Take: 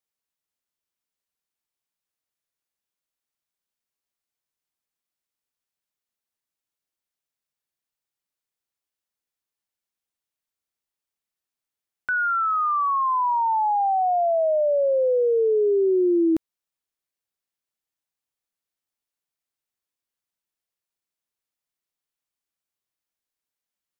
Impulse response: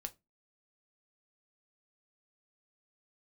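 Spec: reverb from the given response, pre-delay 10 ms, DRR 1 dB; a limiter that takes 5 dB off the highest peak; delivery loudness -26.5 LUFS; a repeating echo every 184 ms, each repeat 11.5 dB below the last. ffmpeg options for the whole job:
-filter_complex "[0:a]alimiter=limit=0.0944:level=0:latency=1,aecho=1:1:184|368|552:0.266|0.0718|0.0194,asplit=2[s0][s1];[1:a]atrim=start_sample=2205,adelay=10[s2];[s1][s2]afir=irnorm=-1:irlink=0,volume=1.26[s3];[s0][s3]amix=inputs=2:normalize=0,volume=0.562"

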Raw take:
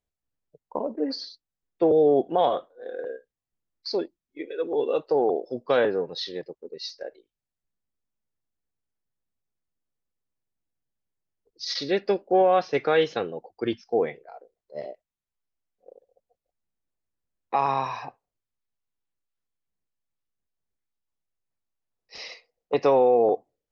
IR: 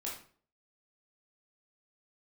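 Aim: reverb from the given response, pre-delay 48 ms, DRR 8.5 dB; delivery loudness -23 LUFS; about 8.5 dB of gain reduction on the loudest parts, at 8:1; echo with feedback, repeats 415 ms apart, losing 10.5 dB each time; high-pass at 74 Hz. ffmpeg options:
-filter_complex "[0:a]highpass=74,acompressor=threshold=0.0631:ratio=8,aecho=1:1:415|830|1245:0.299|0.0896|0.0269,asplit=2[s0][s1];[1:a]atrim=start_sample=2205,adelay=48[s2];[s1][s2]afir=irnorm=-1:irlink=0,volume=0.355[s3];[s0][s3]amix=inputs=2:normalize=0,volume=2.51"

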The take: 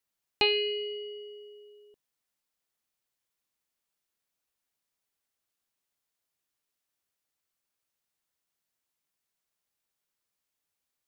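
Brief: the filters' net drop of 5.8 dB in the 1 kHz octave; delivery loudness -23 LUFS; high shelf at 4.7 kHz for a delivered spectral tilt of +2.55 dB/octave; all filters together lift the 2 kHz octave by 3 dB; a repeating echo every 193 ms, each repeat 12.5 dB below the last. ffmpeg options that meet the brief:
-af "equalizer=f=1000:t=o:g=-8.5,equalizer=f=2000:t=o:g=6.5,highshelf=f=4700:g=-4,aecho=1:1:193|386|579:0.237|0.0569|0.0137,volume=1.68"

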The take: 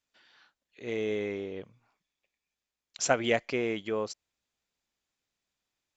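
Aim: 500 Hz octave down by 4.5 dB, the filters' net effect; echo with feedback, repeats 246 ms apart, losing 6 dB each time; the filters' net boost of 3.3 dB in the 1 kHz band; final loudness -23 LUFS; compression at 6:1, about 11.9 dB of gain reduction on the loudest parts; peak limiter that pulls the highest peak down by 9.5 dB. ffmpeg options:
-af "equalizer=f=500:t=o:g=-8.5,equalizer=f=1000:t=o:g=9,acompressor=threshold=0.0282:ratio=6,alimiter=level_in=1.41:limit=0.0631:level=0:latency=1,volume=0.708,aecho=1:1:246|492|738|984|1230|1476:0.501|0.251|0.125|0.0626|0.0313|0.0157,volume=7.08"

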